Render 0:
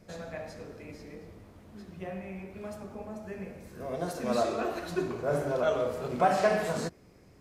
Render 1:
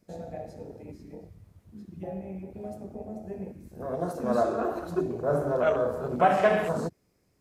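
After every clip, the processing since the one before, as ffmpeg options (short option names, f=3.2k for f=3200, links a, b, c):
-af "afwtdn=0.0158,highshelf=f=5.7k:g=11.5,volume=3dB"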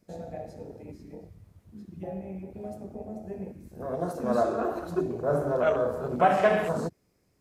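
-af anull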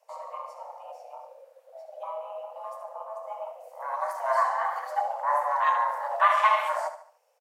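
-filter_complex "[0:a]afreqshift=440,asplit=2[a][b];[b]aecho=0:1:73|146|219|292:0.282|0.113|0.0451|0.018[c];[a][c]amix=inputs=2:normalize=0"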